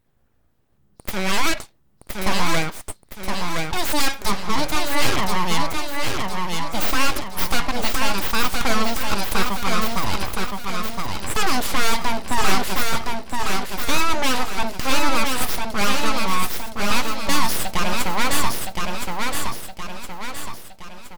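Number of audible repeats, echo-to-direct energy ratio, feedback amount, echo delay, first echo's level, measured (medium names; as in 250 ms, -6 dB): 5, -2.5 dB, 46%, 1017 ms, -3.5 dB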